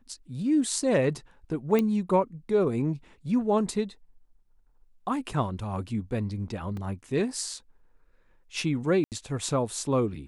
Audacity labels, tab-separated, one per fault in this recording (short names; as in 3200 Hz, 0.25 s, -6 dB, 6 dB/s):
1.790000	1.790000	pop -13 dBFS
6.770000	6.770000	gap 2.5 ms
9.040000	9.120000	gap 78 ms